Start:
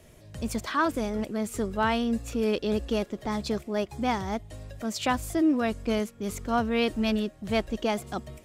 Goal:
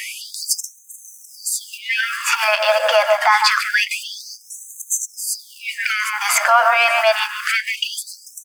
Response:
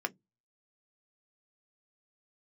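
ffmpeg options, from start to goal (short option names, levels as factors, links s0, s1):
-filter_complex "[0:a]asettb=1/sr,asplit=3[s0][s1][s2];[s0]atrim=end=3.064[s3];[s1]atrim=start=3.06:end=5.24,asetpts=PTS-STARTPTS,afade=t=in:d=0.004:c=qsin,afade=t=out:st=2.176:d=0.004:c=qsin,equalizer=f=390:t=o:w=1.5:g=-9[s4];[s2]atrim=start=5.236[s5];[s3][s4]acrossfade=d=0.004:c1=hsin:c2=qsin[s6];[s6][s5]acrossfade=d=0.004:c1=qsin:c2=hsin,asplit=2[s7][s8];[s8]adelay=145,lowpass=f=1300:p=1,volume=0.376,asplit=2[s9][s10];[s10]adelay=145,lowpass=f=1300:p=1,volume=0.21,asplit=2[s11][s12];[s12]adelay=145,lowpass=f=1300:p=1,volume=0.21[s13];[s7][s9][s11][s13]amix=inputs=4:normalize=0,acrusher=bits=7:mode=log:mix=0:aa=0.000001,equalizer=f=1600:t=o:w=1.1:g=4,asplit=2[s14][s15];[s15]highpass=f=720:p=1,volume=3.98,asoftclip=type=tanh:threshold=0.355[s16];[s14][s16]amix=inputs=2:normalize=0,lowpass=f=7600:p=1,volume=0.501[s17];[1:a]atrim=start_sample=2205,asetrate=39690,aresample=44100[s18];[s17][s18]afir=irnorm=-1:irlink=0,acompressor=threshold=0.0141:ratio=2,alimiter=level_in=26.6:limit=0.891:release=50:level=0:latency=1,afftfilt=real='re*gte(b*sr/1024,500*pow(6200/500,0.5+0.5*sin(2*PI*0.26*pts/sr)))':imag='im*gte(b*sr/1024,500*pow(6200/500,0.5+0.5*sin(2*PI*0.26*pts/sr)))':win_size=1024:overlap=0.75,volume=0.794"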